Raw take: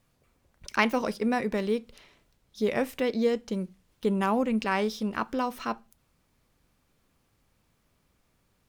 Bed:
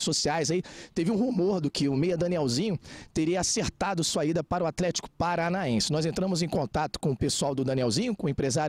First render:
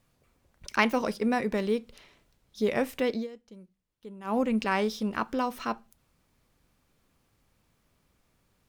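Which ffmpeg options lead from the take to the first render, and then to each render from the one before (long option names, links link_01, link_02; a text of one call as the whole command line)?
ffmpeg -i in.wav -filter_complex "[0:a]asplit=3[link_01][link_02][link_03];[link_01]atrim=end=3.27,asetpts=PTS-STARTPTS,afade=type=out:start_time=3.14:duration=0.13:silence=0.125893[link_04];[link_02]atrim=start=3.27:end=4.24,asetpts=PTS-STARTPTS,volume=-18dB[link_05];[link_03]atrim=start=4.24,asetpts=PTS-STARTPTS,afade=type=in:duration=0.13:silence=0.125893[link_06];[link_04][link_05][link_06]concat=n=3:v=0:a=1" out.wav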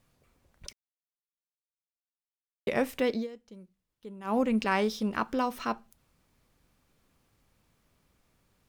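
ffmpeg -i in.wav -filter_complex "[0:a]asplit=3[link_01][link_02][link_03];[link_01]atrim=end=0.73,asetpts=PTS-STARTPTS,afade=type=out:start_time=0.726:duration=0.004:curve=hsin[link_04];[link_02]atrim=start=0.73:end=2.67,asetpts=PTS-STARTPTS,volume=0[link_05];[link_03]atrim=start=2.67,asetpts=PTS-STARTPTS,afade=type=in:duration=0.004:curve=hsin[link_06];[link_04][link_05][link_06]concat=n=3:v=0:a=1" out.wav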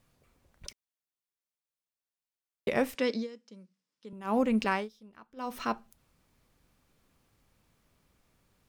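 ffmpeg -i in.wav -filter_complex "[0:a]asettb=1/sr,asplit=3[link_01][link_02][link_03];[link_01]atrim=end=2.954[link_04];[link_02]atrim=start=2.95:end=4.13,asetpts=PTS-STARTPTS,afade=type=in:duration=0.004:curve=qsin,afade=type=out:start_time=1.176:duration=0.004:curve=qsin,highpass=frequency=180:width=0.5412,highpass=frequency=180:width=1.3066,equalizer=frequency=360:width_type=q:width=4:gain=-7,equalizer=frequency=720:width_type=q:width=4:gain=-8,equalizer=frequency=5200:width_type=q:width=4:gain=8,lowpass=frequency=9200:width=0.5412,lowpass=frequency=9200:width=1.3066[link_05];[link_03]atrim=start=4.126[link_06];[link_04][link_05]acrossfade=duration=0.004:curve1=hsin:curve2=qsin[link_07];[link_07][link_06]acrossfade=duration=0.004:curve1=qsin:curve2=hsin,asplit=3[link_08][link_09][link_10];[link_08]atrim=end=4.89,asetpts=PTS-STARTPTS,afade=type=out:start_time=4.68:duration=0.21:silence=0.0668344[link_11];[link_09]atrim=start=4.89:end=5.36,asetpts=PTS-STARTPTS,volume=-23.5dB[link_12];[link_10]atrim=start=5.36,asetpts=PTS-STARTPTS,afade=type=in:duration=0.21:silence=0.0668344[link_13];[link_11][link_12][link_13]concat=n=3:v=0:a=1" out.wav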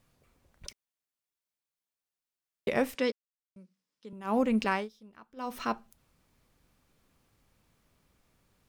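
ffmpeg -i in.wav -filter_complex "[0:a]asplit=3[link_01][link_02][link_03];[link_01]atrim=end=3.12,asetpts=PTS-STARTPTS,afade=type=out:start_time=3.116:duration=0.004:curve=hsin[link_04];[link_02]atrim=start=3.12:end=3.56,asetpts=PTS-STARTPTS,volume=0[link_05];[link_03]atrim=start=3.56,asetpts=PTS-STARTPTS,afade=type=in:duration=0.004:curve=hsin[link_06];[link_04][link_05][link_06]concat=n=3:v=0:a=1" out.wav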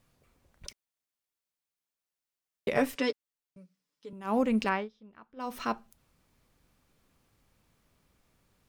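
ffmpeg -i in.wav -filter_complex "[0:a]asettb=1/sr,asplit=3[link_01][link_02][link_03];[link_01]atrim=end=2.754[link_04];[link_02]atrim=start=2.75:end=4.11,asetpts=PTS-STARTPTS,afade=type=in:duration=0.004:curve=qsin,afade=type=out:start_time=1.356:duration=0.004:curve=qsin,aecho=1:1:6.9:0.65,atrim=end_sample=59976[link_05];[link_03]atrim=start=4.106[link_06];[link_04][link_05]acrossfade=duration=0.004:curve1=hsin:curve2=qsin[link_07];[link_07][link_06]acrossfade=duration=0.004:curve1=qsin:curve2=hsin,asettb=1/sr,asplit=3[link_08][link_09][link_10];[link_08]atrim=end=4.694[link_11];[link_09]atrim=start=4.69:end=5.4,asetpts=PTS-STARTPTS,afade=type=in:duration=0.004:curve=qsin,afade=type=out:start_time=0.706:duration=0.004:curve=qsin,lowpass=3200[link_12];[link_10]atrim=start=5.396[link_13];[link_11][link_12]acrossfade=duration=0.004:curve1=hsin:curve2=qsin[link_14];[link_14][link_13]acrossfade=duration=0.004:curve1=qsin:curve2=hsin" out.wav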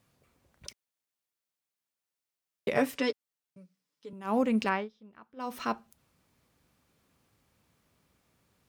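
ffmpeg -i in.wav -af "highpass=69" out.wav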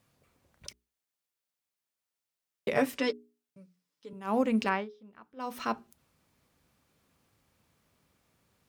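ffmpeg -i in.wav -af "bandreject=frequency=60:width_type=h:width=6,bandreject=frequency=120:width_type=h:width=6,bandreject=frequency=180:width_type=h:width=6,bandreject=frequency=240:width_type=h:width=6,bandreject=frequency=300:width_type=h:width=6,bandreject=frequency=360:width_type=h:width=6,bandreject=frequency=420:width_type=h:width=6" out.wav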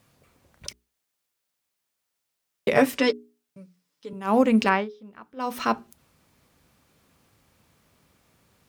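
ffmpeg -i in.wav -af "volume=8dB" out.wav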